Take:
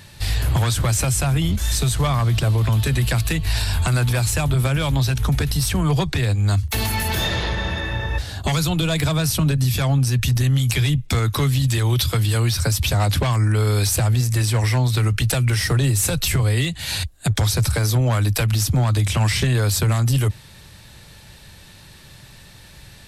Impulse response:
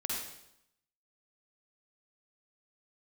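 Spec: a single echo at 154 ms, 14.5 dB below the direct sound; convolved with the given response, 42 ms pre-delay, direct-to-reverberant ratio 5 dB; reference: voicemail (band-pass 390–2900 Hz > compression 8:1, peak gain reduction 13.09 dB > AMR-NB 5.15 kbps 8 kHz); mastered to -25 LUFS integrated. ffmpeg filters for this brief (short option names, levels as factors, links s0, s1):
-filter_complex "[0:a]aecho=1:1:154:0.188,asplit=2[s0][s1];[1:a]atrim=start_sample=2205,adelay=42[s2];[s1][s2]afir=irnorm=-1:irlink=0,volume=0.376[s3];[s0][s3]amix=inputs=2:normalize=0,highpass=390,lowpass=2900,acompressor=threshold=0.0224:ratio=8,volume=5.96" -ar 8000 -c:a libopencore_amrnb -b:a 5150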